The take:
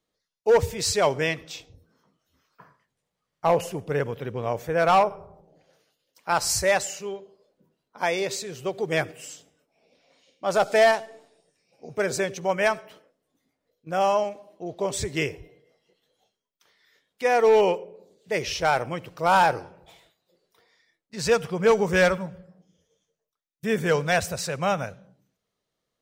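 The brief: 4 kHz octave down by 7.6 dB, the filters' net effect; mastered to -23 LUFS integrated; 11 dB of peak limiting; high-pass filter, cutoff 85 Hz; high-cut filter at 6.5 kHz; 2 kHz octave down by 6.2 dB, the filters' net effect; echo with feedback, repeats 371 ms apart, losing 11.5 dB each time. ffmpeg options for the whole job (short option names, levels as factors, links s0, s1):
-af "highpass=85,lowpass=6500,equalizer=f=2000:t=o:g=-6.5,equalizer=f=4000:t=o:g=-7.5,alimiter=limit=0.0794:level=0:latency=1,aecho=1:1:371|742|1113:0.266|0.0718|0.0194,volume=2.99"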